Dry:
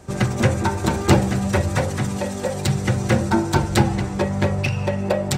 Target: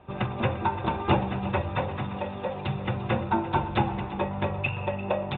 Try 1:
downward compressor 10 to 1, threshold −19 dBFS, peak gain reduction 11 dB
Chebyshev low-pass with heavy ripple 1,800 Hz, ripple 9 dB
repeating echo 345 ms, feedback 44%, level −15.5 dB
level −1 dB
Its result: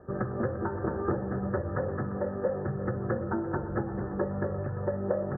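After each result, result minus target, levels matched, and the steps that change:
downward compressor: peak gain reduction +11 dB; 2,000 Hz band −4.5 dB
remove: downward compressor 10 to 1, threshold −19 dBFS, peak gain reduction 11 dB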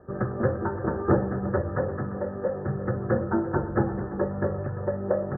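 2,000 Hz band −4.5 dB
change: Chebyshev low-pass with heavy ripple 3,700 Hz, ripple 9 dB

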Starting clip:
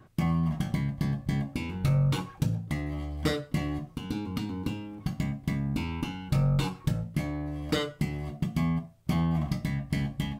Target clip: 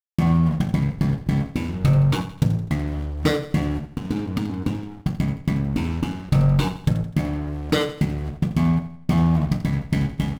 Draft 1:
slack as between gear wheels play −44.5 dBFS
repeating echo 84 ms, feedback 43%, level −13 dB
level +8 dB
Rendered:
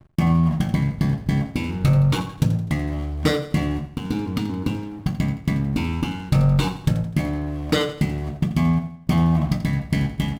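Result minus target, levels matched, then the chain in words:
slack as between gear wheels: distortion −9 dB
slack as between gear wheels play −34.5 dBFS
repeating echo 84 ms, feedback 43%, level −13 dB
level +8 dB

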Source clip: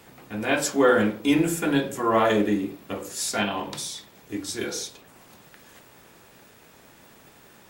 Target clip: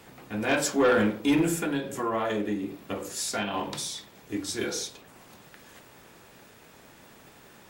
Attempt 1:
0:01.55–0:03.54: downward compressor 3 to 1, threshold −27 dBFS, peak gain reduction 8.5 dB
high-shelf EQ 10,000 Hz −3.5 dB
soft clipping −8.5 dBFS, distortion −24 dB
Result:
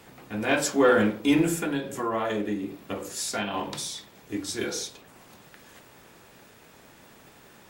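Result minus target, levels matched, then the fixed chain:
soft clipping: distortion −10 dB
0:01.55–0:03.54: downward compressor 3 to 1, threshold −27 dBFS, peak gain reduction 8.5 dB
high-shelf EQ 10,000 Hz −3.5 dB
soft clipping −15.5 dBFS, distortion −14 dB

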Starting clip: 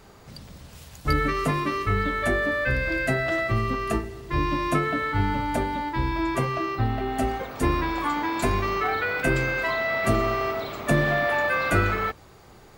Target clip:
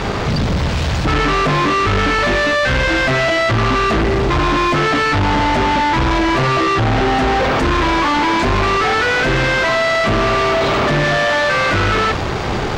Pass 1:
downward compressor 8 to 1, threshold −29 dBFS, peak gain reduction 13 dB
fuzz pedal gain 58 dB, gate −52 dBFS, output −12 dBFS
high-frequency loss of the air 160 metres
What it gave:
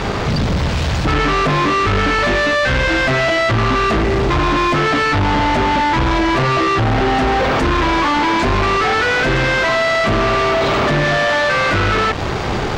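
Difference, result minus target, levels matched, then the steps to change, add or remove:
downward compressor: peak gain reduction +7 dB
change: downward compressor 8 to 1, threshold −21 dBFS, peak gain reduction 6 dB

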